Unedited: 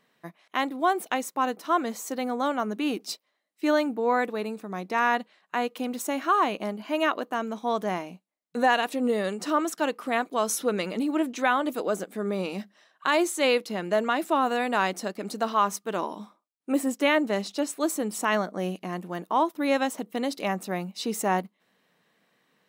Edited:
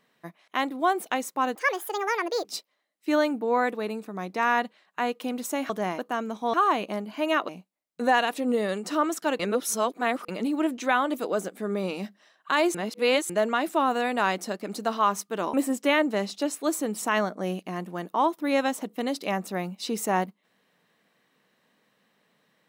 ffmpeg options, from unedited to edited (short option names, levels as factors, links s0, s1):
-filter_complex "[0:a]asplit=12[s0][s1][s2][s3][s4][s5][s6][s7][s8][s9][s10][s11];[s0]atrim=end=1.554[s12];[s1]atrim=start=1.55:end=3,asetpts=PTS-STARTPTS,asetrate=71442,aresample=44100,atrim=end_sample=39472,asetpts=PTS-STARTPTS[s13];[s2]atrim=start=2.996:end=6.252[s14];[s3]atrim=start=7.748:end=8.042[s15];[s4]atrim=start=7.198:end=7.752[s16];[s5]atrim=start=6.248:end=7.202[s17];[s6]atrim=start=8.038:end=9.952[s18];[s7]atrim=start=9.948:end=10.842,asetpts=PTS-STARTPTS,areverse[s19];[s8]atrim=start=10.838:end=13.302[s20];[s9]atrim=start=13.298:end=13.852,asetpts=PTS-STARTPTS,areverse[s21];[s10]atrim=start=13.848:end=16.092[s22];[s11]atrim=start=16.698[s23];[s12][s13]acrossfade=d=0.004:c1=hsin:c2=hsin[s24];[s24][s14]acrossfade=d=0.004:c1=hsin:c2=hsin[s25];[s25][s15]acrossfade=d=0.004:c1=hsin:c2=hsin[s26];[s26][s16]acrossfade=d=0.004:c1=hsin:c2=hsin[s27];[s27][s17]acrossfade=d=0.004:c1=hsin:c2=hsin[s28];[s28][s18]acrossfade=d=0.004:c1=hsin:c2=hsin[s29];[s29][s19]acrossfade=d=0.004:c1=hsin:c2=hsin[s30];[s30][s20]acrossfade=d=0.004:c1=hsin:c2=hsin[s31];[s31][s21]acrossfade=d=0.004:c1=hsin:c2=hsin[s32];[s32][s22]acrossfade=d=0.004:c1=hsin:c2=hsin[s33];[s33][s23]acrossfade=d=0.004:c1=hsin:c2=hsin"